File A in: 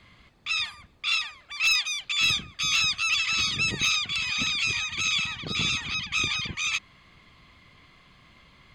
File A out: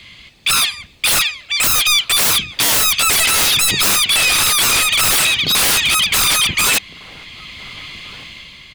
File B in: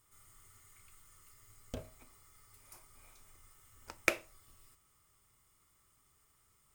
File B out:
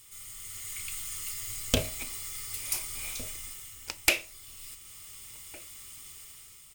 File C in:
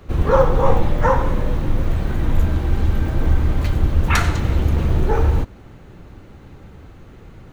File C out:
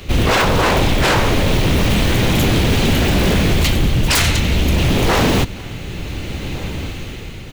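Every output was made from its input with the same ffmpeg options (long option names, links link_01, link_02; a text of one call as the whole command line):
ffmpeg -i in.wav -filter_complex "[0:a]highshelf=frequency=1900:width_type=q:width=1.5:gain=10,dynaudnorm=framelen=180:gausssize=7:maxgain=7.5dB,aeval=exprs='0.141*(abs(mod(val(0)/0.141+3,4)-2)-1)':channel_layout=same,asplit=2[link_01][link_02];[link_02]adelay=1458,volume=-18dB,highshelf=frequency=4000:gain=-32.8[link_03];[link_01][link_03]amix=inputs=2:normalize=0,volume=8dB" out.wav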